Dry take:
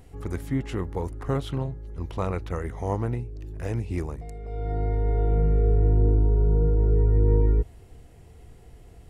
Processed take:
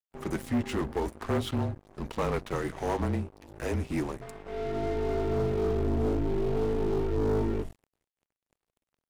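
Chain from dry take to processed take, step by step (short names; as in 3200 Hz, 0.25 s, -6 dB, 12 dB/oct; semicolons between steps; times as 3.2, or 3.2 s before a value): flange 0.45 Hz, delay 3.5 ms, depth 5.7 ms, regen -45%; notches 50/100/150/200/250/300 Hz; frequency shift -28 Hz; low shelf 93 Hz -11 dB; crossover distortion -53 dBFS; dynamic EQ 220 Hz, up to +4 dB, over -51 dBFS, Q 4.1; sample leveller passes 3; gain -2 dB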